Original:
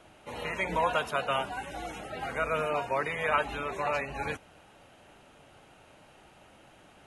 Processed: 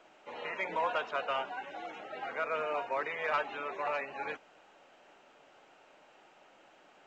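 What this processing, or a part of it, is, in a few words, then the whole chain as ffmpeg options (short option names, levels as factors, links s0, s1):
telephone: -af "highpass=350,lowpass=3300,asoftclip=type=tanh:threshold=0.126,volume=0.708" -ar 16000 -c:a pcm_alaw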